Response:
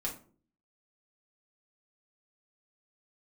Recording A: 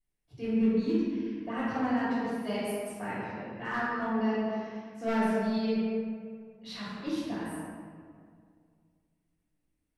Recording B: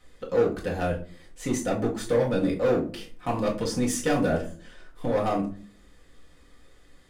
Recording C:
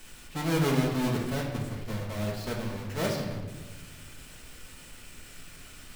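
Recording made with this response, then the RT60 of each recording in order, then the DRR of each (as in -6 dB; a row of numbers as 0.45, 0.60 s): B; 2.1, 0.45, 1.2 s; -10.5, -4.0, -2.0 dB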